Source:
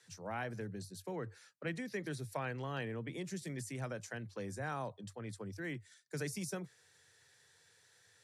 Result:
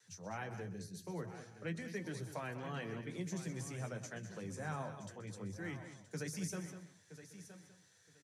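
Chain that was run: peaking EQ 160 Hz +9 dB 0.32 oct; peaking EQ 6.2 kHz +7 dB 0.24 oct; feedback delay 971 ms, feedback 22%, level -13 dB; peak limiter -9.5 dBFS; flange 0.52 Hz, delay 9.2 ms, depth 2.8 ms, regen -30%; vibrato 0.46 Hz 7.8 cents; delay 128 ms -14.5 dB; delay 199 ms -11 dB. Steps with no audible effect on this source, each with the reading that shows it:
peak limiter -9.5 dBFS: peak at its input -24.0 dBFS

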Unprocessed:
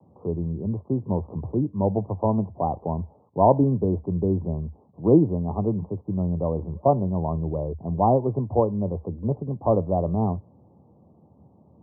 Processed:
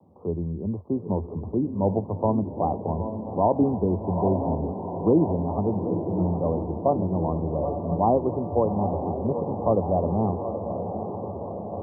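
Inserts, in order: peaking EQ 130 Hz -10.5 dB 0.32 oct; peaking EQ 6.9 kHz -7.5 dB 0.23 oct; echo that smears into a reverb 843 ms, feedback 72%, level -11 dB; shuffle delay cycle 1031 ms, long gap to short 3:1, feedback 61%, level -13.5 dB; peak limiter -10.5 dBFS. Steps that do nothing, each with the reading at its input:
peaking EQ 6.9 kHz: input has nothing above 1.2 kHz

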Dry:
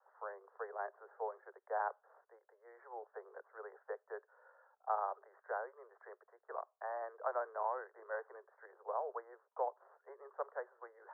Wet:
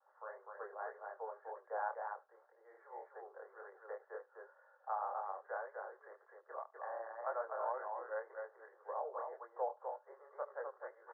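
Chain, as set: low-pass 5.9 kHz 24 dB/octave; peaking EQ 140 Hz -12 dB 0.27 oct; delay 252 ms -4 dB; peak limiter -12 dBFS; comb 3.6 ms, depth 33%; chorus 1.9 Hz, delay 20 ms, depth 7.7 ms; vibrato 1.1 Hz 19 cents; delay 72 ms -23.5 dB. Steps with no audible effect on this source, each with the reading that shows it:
low-pass 5.9 kHz: input has nothing above 1.9 kHz; peaking EQ 140 Hz: input has nothing below 340 Hz; peak limiter -12 dBFS: peak at its input -23.0 dBFS

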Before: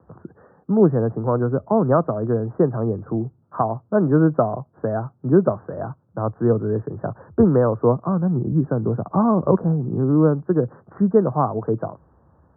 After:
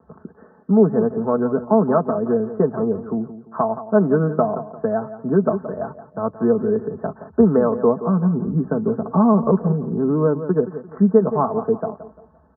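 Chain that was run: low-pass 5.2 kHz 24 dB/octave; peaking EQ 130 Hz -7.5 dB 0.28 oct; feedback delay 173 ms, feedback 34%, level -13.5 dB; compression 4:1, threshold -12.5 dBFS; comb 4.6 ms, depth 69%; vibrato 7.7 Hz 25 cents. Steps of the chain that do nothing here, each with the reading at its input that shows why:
low-pass 5.2 kHz: input has nothing above 1.5 kHz

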